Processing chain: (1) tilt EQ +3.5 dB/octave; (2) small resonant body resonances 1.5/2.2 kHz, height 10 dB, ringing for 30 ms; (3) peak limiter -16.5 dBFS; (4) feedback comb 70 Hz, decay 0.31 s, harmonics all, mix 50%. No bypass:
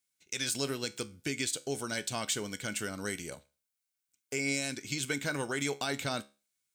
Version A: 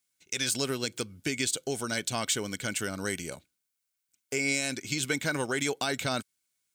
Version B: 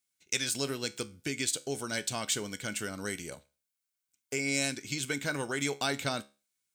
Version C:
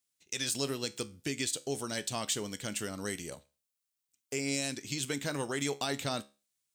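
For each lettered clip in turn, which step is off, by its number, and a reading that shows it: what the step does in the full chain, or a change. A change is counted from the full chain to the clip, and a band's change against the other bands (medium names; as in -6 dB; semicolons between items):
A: 4, loudness change +3.5 LU; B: 3, crest factor change +4.5 dB; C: 2, 2 kHz band -4.0 dB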